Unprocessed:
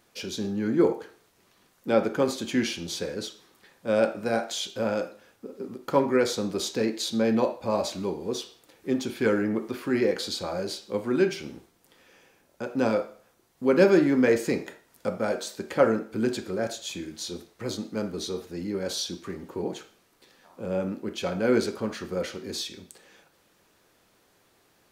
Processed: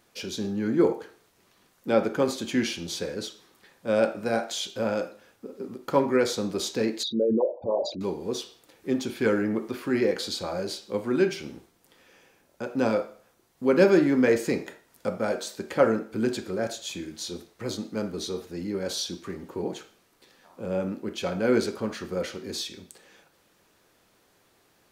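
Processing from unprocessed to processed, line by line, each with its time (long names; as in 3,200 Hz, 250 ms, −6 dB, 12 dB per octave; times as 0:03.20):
0:07.03–0:08.01: spectral envelope exaggerated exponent 3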